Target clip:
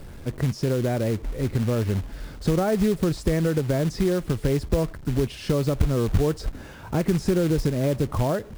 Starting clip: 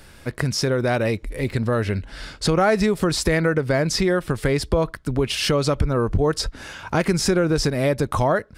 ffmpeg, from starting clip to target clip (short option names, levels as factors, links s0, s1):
-af "aeval=exprs='val(0)+0.5*0.02*sgn(val(0))':c=same,tiltshelf=f=880:g=8.5,acrusher=bits=4:mode=log:mix=0:aa=0.000001,volume=0.355"